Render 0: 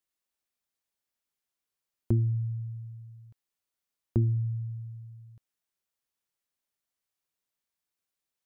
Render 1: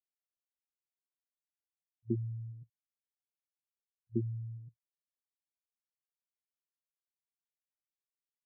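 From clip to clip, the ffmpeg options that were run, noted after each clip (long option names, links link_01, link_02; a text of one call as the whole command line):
ffmpeg -i in.wav -af "afftfilt=real='re*gte(hypot(re,im),0.224)':imag='im*gte(hypot(re,im),0.224)':win_size=1024:overlap=0.75,aemphasis=mode=production:type=riaa,afftfilt=real='re*between(b*sr/4096,110,570)':imag='im*between(b*sr/4096,110,570)':win_size=4096:overlap=0.75,volume=5.5dB" out.wav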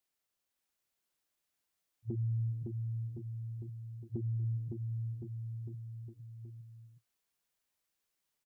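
ffmpeg -i in.wav -af "acompressor=threshold=-36dB:ratio=6,alimiter=level_in=15dB:limit=-24dB:level=0:latency=1:release=57,volume=-15dB,aecho=1:1:560|1064|1518|1926|2293:0.631|0.398|0.251|0.158|0.1,volume=9.5dB" out.wav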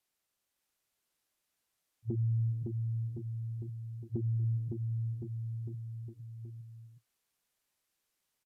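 ffmpeg -i in.wav -af "aresample=32000,aresample=44100,volume=3dB" out.wav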